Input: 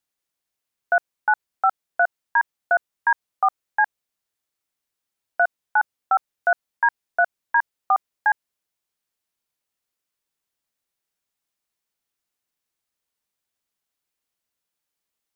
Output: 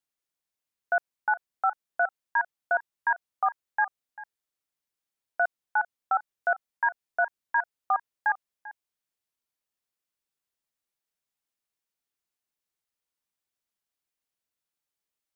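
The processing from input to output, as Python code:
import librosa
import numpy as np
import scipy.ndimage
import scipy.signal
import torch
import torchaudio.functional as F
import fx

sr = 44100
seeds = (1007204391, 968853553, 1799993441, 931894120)

y = x + 10.0 ** (-17.5 / 20.0) * np.pad(x, (int(393 * sr / 1000.0), 0))[:len(x)]
y = y * librosa.db_to_amplitude(-6.0)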